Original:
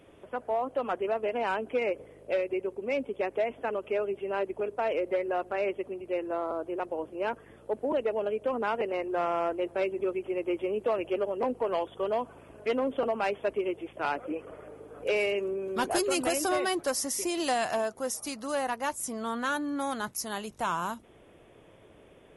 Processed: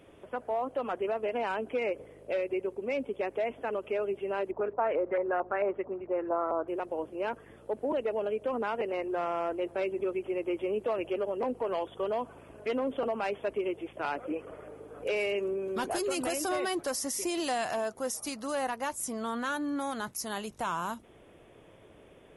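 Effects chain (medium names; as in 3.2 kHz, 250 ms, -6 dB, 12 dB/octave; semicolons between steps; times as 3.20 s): peak limiter -24 dBFS, peak gain reduction 6.5 dB; 4.51–6.68 s: LFO low-pass saw up 4.5 Hz 870–1900 Hz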